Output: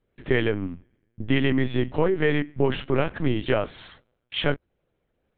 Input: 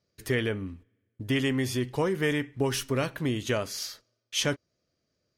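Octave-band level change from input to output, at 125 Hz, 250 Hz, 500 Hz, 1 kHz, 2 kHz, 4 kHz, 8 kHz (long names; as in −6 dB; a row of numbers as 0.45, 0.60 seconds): +4.0 dB, +4.5 dB, +5.5 dB, +4.5 dB, +3.5 dB, 0.0 dB, below −40 dB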